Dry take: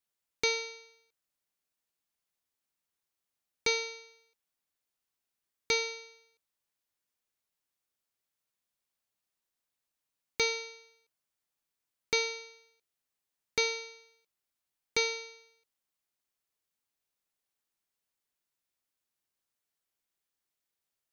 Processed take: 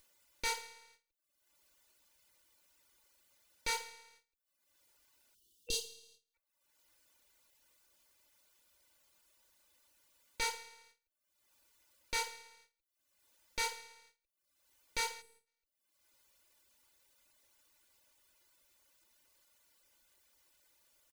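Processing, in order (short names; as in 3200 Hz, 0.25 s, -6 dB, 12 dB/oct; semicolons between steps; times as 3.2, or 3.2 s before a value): minimum comb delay 3.4 ms; spectral gain 5.35–6.34, 490–2700 Hz -29 dB; reverb removal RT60 0.67 s; spectral gain 15.22–15.47, 490–7600 Hz -13 dB; gate with hold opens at -59 dBFS; comb 2 ms, depth 37%; in parallel at +0.5 dB: compressor, threshold -39 dBFS, peak gain reduction 12.5 dB; on the sum: limiter -22.5 dBFS, peak gain reduction 12 dB; upward compressor, threshold -45 dBFS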